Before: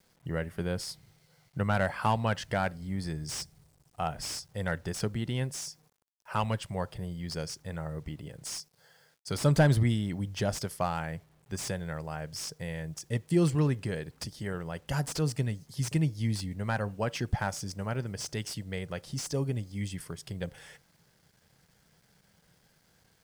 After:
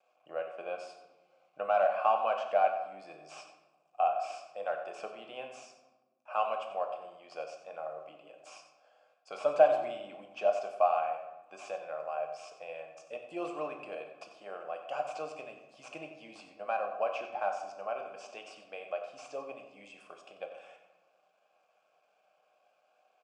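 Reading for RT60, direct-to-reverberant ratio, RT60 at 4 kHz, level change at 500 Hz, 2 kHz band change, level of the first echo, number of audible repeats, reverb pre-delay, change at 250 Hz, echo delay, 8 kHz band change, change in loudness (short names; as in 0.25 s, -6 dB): 1.1 s, 3.0 dB, 0.65 s, +3.0 dB, -6.0 dB, -12.0 dB, 1, 3 ms, -19.0 dB, 92 ms, under -15 dB, -1.5 dB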